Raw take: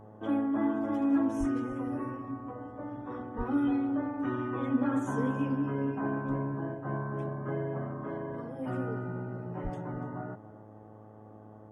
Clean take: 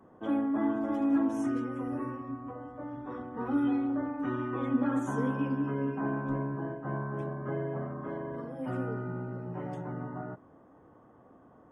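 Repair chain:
hum removal 107.1 Hz, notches 8
0:01.39–0:01.51: high-pass filter 140 Hz 24 dB per octave
0:03.37–0:03.49: high-pass filter 140 Hz 24 dB per octave
0:09.63–0:09.75: high-pass filter 140 Hz 24 dB per octave
echo removal 290 ms −18.5 dB

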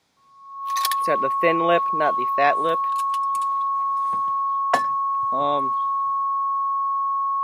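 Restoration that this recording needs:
notch filter 1,100 Hz, Q 30

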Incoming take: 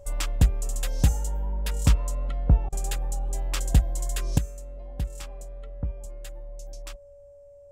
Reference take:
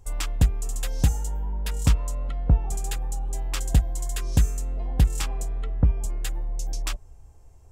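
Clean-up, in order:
notch filter 570 Hz, Q 30
repair the gap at 0:02.69, 33 ms
level 0 dB, from 0:04.38 +11 dB

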